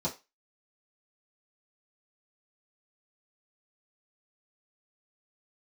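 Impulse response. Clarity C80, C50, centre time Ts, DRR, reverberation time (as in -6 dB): 21.0 dB, 14.5 dB, 17 ms, -8.0 dB, 0.25 s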